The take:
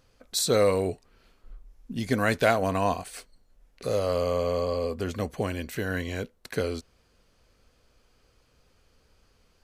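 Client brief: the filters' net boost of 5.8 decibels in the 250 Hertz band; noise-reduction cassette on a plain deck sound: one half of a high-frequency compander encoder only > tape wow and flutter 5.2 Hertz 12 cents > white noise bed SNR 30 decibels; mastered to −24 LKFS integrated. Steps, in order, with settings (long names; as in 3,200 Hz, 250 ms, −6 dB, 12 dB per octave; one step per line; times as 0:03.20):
parametric band 250 Hz +7 dB
one half of a high-frequency compander encoder only
tape wow and flutter 5.2 Hz 12 cents
white noise bed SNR 30 dB
level +2 dB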